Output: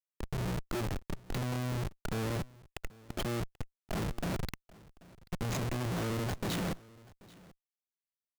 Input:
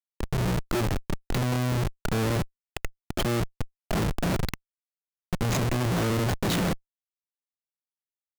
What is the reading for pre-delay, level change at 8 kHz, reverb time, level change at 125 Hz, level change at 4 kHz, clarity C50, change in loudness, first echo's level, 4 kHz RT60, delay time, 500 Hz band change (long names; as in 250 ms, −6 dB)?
no reverb audible, −8.5 dB, no reverb audible, −8.5 dB, −8.5 dB, no reverb audible, −8.5 dB, −22.5 dB, no reverb audible, 785 ms, −8.5 dB